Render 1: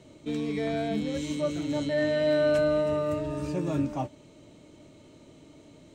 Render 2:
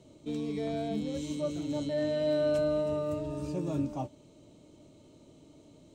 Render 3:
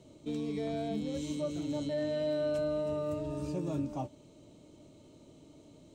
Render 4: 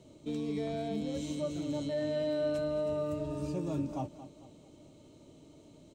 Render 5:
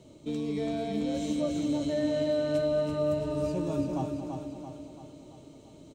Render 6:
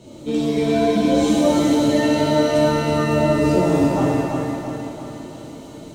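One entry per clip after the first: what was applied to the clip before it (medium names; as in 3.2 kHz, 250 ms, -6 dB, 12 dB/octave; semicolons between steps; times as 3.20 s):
peaking EQ 1.8 kHz -9.5 dB 1 oct; trim -3.5 dB
compression 2:1, threshold -32 dBFS, peak gain reduction 4.5 dB
feedback delay 223 ms, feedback 40%, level -14 dB
feedback delay 336 ms, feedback 54%, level -5.5 dB; trim +3 dB
pitch-shifted reverb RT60 1.1 s, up +7 st, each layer -8 dB, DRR -5 dB; trim +8 dB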